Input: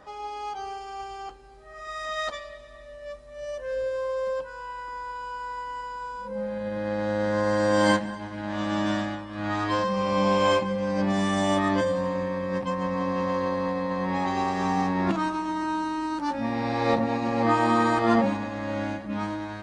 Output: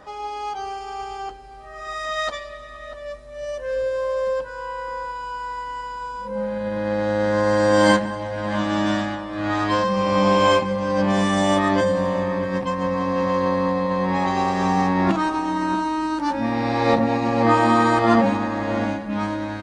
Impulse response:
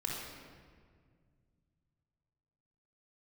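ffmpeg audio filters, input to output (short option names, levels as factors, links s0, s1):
-filter_complex "[0:a]asplit=2[s0][s1];[s1]adelay=641.4,volume=0.251,highshelf=f=4000:g=-14.4[s2];[s0][s2]amix=inputs=2:normalize=0,volume=1.78"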